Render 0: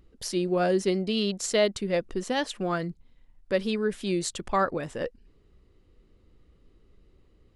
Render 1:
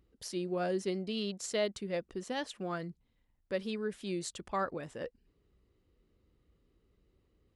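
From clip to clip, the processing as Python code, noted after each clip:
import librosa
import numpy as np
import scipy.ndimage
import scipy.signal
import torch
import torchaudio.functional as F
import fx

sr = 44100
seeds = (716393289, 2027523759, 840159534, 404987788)

y = scipy.signal.sosfilt(scipy.signal.butter(2, 41.0, 'highpass', fs=sr, output='sos'), x)
y = y * 10.0 ** (-9.0 / 20.0)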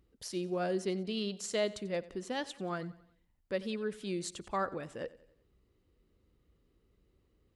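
y = fx.echo_feedback(x, sr, ms=91, feedback_pct=48, wet_db=-19.0)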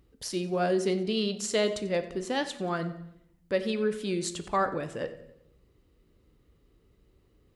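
y = fx.room_shoebox(x, sr, seeds[0], volume_m3=200.0, walls='mixed', distance_m=0.32)
y = y * 10.0 ** (6.5 / 20.0)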